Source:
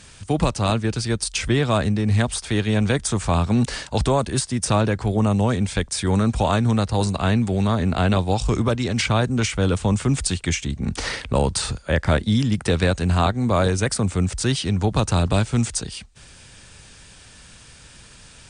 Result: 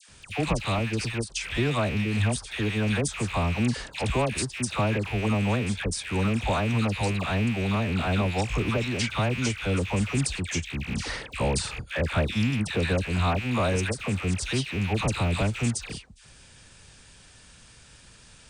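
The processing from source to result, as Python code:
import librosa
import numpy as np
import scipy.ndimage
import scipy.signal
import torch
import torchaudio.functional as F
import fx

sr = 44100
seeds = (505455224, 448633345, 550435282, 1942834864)

y = fx.rattle_buzz(x, sr, strikes_db=-30.0, level_db=-16.0)
y = fx.dispersion(y, sr, late='lows', ms=89.0, hz=1200.0)
y = fx.end_taper(y, sr, db_per_s=250.0)
y = y * 10.0 ** (-6.0 / 20.0)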